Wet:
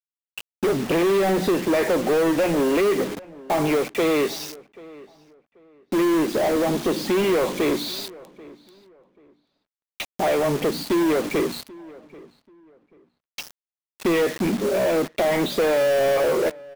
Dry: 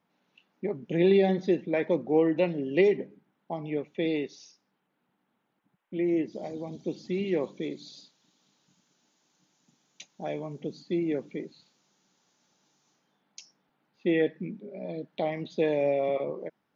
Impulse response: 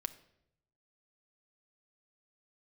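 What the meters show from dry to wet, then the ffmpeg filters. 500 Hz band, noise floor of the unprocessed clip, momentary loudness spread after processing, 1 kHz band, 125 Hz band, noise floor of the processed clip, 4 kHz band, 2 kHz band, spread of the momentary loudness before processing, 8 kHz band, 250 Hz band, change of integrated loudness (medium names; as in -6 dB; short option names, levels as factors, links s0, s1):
+7.5 dB, -77 dBFS, 16 LU, +12.5 dB, +4.5 dB, under -85 dBFS, +14.0 dB, +10.5 dB, 15 LU, no reading, +6.5 dB, +7.5 dB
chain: -filter_complex "[0:a]acrossover=split=3800[s0][s1];[s1]acompressor=threshold=0.00178:ratio=4:attack=1:release=60[s2];[s0][s2]amix=inputs=2:normalize=0,bandreject=f=60:t=h:w=6,bandreject=f=120:t=h:w=6,bandreject=f=180:t=h:w=6,bandreject=f=240:t=h:w=6,acompressor=threshold=0.0282:ratio=4,asplit=2[s3][s4];[s4]highpass=f=720:p=1,volume=25.1,asoftclip=type=tanh:threshold=0.0794[s5];[s3][s5]amix=inputs=2:normalize=0,lowpass=f=1800:p=1,volume=0.501,acrusher=bits=6:mix=0:aa=0.000001,asplit=2[s6][s7];[s7]adelay=786,lowpass=f=2100:p=1,volume=0.0891,asplit=2[s8][s9];[s9]adelay=786,lowpass=f=2100:p=1,volume=0.27[s10];[s8][s10]amix=inputs=2:normalize=0[s11];[s6][s11]amix=inputs=2:normalize=0,volume=2.82"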